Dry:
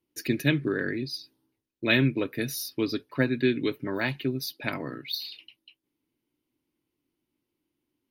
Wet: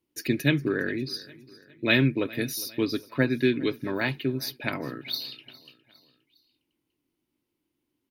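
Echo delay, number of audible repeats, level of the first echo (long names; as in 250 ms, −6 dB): 408 ms, 3, −21.0 dB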